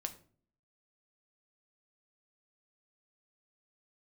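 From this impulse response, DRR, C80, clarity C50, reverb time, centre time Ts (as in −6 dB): 6.0 dB, 18.5 dB, 14.5 dB, 0.45 s, 7 ms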